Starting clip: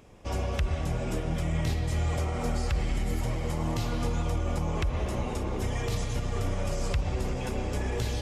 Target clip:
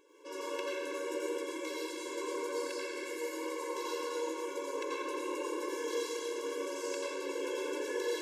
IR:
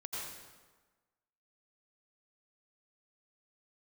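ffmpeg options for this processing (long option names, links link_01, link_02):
-filter_complex "[0:a]bandreject=frequency=106:width_type=h:width=4,bandreject=frequency=212:width_type=h:width=4,bandreject=frequency=318:width_type=h:width=4,bandreject=frequency=424:width_type=h:width=4,bandreject=frequency=530:width_type=h:width=4,bandreject=frequency=636:width_type=h:width=4,bandreject=frequency=742:width_type=h:width=4,bandreject=frequency=848:width_type=h:width=4,bandreject=frequency=954:width_type=h:width=4,bandreject=frequency=1060:width_type=h:width=4,bandreject=frequency=1166:width_type=h:width=4,bandreject=frequency=1272:width_type=h:width=4,bandreject=frequency=1378:width_type=h:width=4,bandreject=frequency=1484:width_type=h:width=4,bandreject=frequency=1590:width_type=h:width=4,bandreject=frequency=1696:width_type=h:width=4,bandreject=frequency=1802:width_type=h:width=4,bandreject=frequency=1908:width_type=h:width=4,bandreject=frequency=2014:width_type=h:width=4,bandreject=frequency=2120:width_type=h:width=4,bandreject=frequency=2226:width_type=h:width=4,bandreject=frequency=2332:width_type=h:width=4,bandreject=frequency=2438:width_type=h:width=4,bandreject=frequency=2544:width_type=h:width=4,bandreject=frequency=2650:width_type=h:width=4,bandreject=frequency=2756:width_type=h:width=4,bandreject=frequency=2862:width_type=h:width=4,bandreject=frequency=2968:width_type=h:width=4,bandreject=frequency=3074:width_type=h:width=4,bandreject=frequency=3180:width_type=h:width=4,bandreject=frequency=3286:width_type=h:width=4,bandreject=frequency=3392:width_type=h:width=4,bandreject=frequency=3498:width_type=h:width=4,bandreject=frequency=3604:width_type=h:width=4,bandreject=frequency=3710:width_type=h:width=4,bandreject=frequency=3816:width_type=h:width=4,bandreject=frequency=3922:width_type=h:width=4,bandreject=frequency=4028:width_type=h:width=4,bandreject=frequency=4134:width_type=h:width=4,bandreject=frequency=4240:width_type=h:width=4[link_01];[1:a]atrim=start_sample=2205[link_02];[link_01][link_02]afir=irnorm=-1:irlink=0,afftfilt=real='re*eq(mod(floor(b*sr/1024/290),2),1)':imag='im*eq(mod(floor(b*sr/1024/290),2),1)':win_size=1024:overlap=0.75,volume=1.5dB"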